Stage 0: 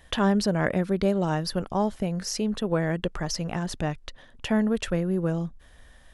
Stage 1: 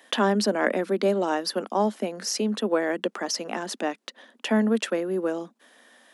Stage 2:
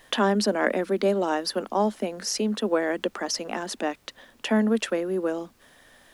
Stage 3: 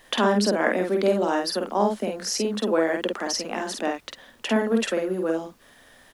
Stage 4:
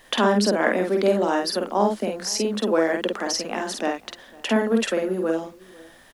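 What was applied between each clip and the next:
Butterworth high-pass 210 Hz 72 dB per octave; level +3 dB
background noise pink −62 dBFS
double-tracking delay 49 ms −3 dB
slap from a distant wall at 86 metres, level −23 dB; level +1.5 dB

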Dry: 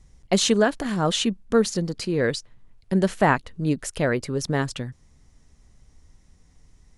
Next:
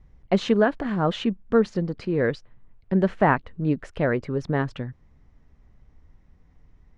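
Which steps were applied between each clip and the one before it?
low-pass filter 2,100 Hz 12 dB per octave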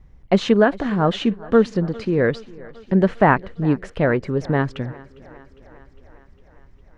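feedback echo with a high-pass in the loop 405 ms, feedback 67%, high-pass 150 Hz, level −21 dB
level +4.5 dB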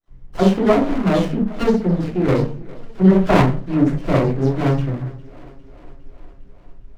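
all-pass dispersion lows, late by 82 ms, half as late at 1,800 Hz
convolution reverb RT60 0.35 s, pre-delay 3 ms, DRR −6 dB
windowed peak hold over 17 samples
level −5.5 dB

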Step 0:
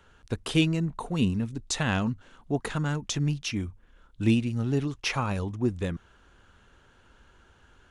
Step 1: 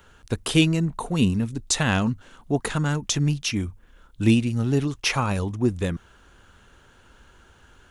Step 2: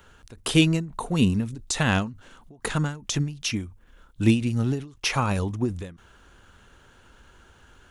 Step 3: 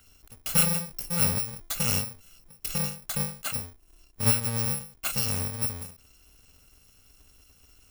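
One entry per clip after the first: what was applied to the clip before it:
high-shelf EQ 9,200 Hz +11 dB; level +4.5 dB
every ending faded ahead of time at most 130 dB per second
samples in bit-reversed order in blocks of 128 samples; level −4 dB

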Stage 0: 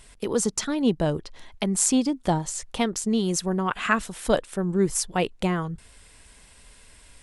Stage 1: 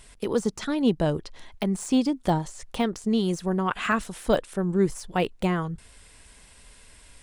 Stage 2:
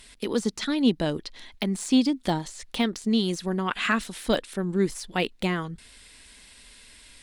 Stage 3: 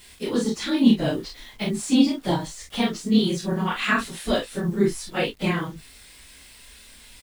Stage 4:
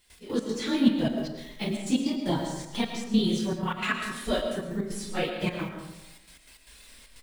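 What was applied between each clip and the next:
de-essing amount 80%
graphic EQ with 10 bands 125 Hz −4 dB, 250 Hz +7 dB, 2,000 Hz +6 dB, 4,000 Hz +10 dB, 16,000 Hz +9 dB; level −4.5 dB
random phases in long frames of 50 ms; bit reduction 9 bits; on a send: ambience of single reflections 29 ms −4 dB, 47 ms −7 dB
spectral magnitudes quantised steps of 15 dB; gate pattern ".x.x.xxxx" 153 BPM −12 dB; comb and all-pass reverb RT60 1 s, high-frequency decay 0.5×, pre-delay 65 ms, DRR 5 dB; level −4 dB

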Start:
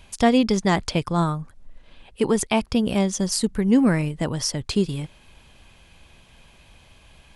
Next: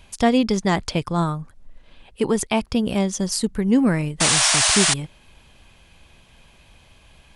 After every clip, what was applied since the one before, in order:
sound drawn into the spectrogram noise, 0:04.20–0:04.94, 590–10,000 Hz −18 dBFS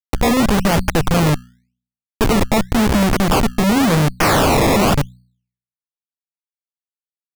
comparator with hysteresis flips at −23.5 dBFS
hum removal 61.34 Hz, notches 4
sample-and-hold swept by an LFO 20×, swing 100% 0.91 Hz
level +9 dB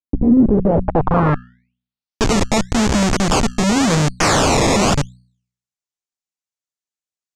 in parallel at −9 dB: soft clipping −19 dBFS, distortion −13 dB
on the sum: low-pass filter sweep 280 Hz → 7,000 Hz, 0:00.33–0:02.29
level −2.5 dB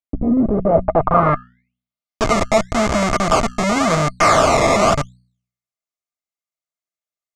dynamic equaliser 1,200 Hz, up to +4 dB, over −29 dBFS, Q 1.1
hollow resonant body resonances 650/1,200/2,100 Hz, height 13 dB, ringing for 40 ms
level −4.5 dB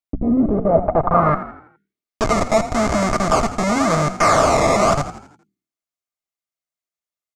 dynamic equaliser 3,000 Hz, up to −6 dB, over −38 dBFS, Q 1.7
on a send: echo with shifted repeats 83 ms, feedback 46%, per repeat +39 Hz, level −12.5 dB
on the sum: level −1 dB

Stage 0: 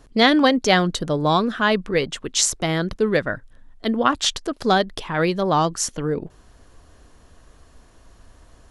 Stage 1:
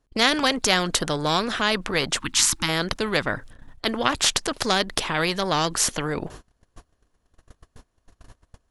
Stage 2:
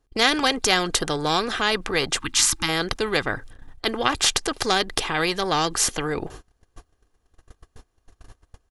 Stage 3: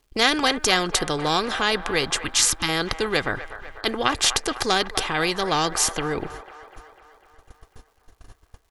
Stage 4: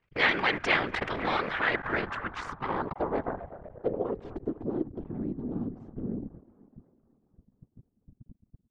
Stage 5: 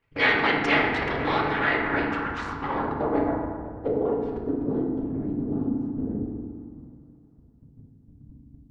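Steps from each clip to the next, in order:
gain on a spectral selection 0:02.20–0:02.69, 340–820 Hz −28 dB; noise gate −43 dBFS, range −34 dB; every bin compressed towards the loudest bin 2 to 1
comb filter 2.5 ms, depth 35%
surface crackle 300 per second −54 dBFS; delay with a band-pass on its return 249 ms, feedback 62%, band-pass 1,100 Hz, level −11.5 dB
sub-harmonics by changed cycles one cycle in 3, muted; random phases in short frames; low-pass filter sweep 2,200 Hz → 240 Hz, 0:01.46–0:05.26; level −6 dB
convolution reverb RT60 1.5 s, pre-delay 4 ms, DRR −2.5 dB

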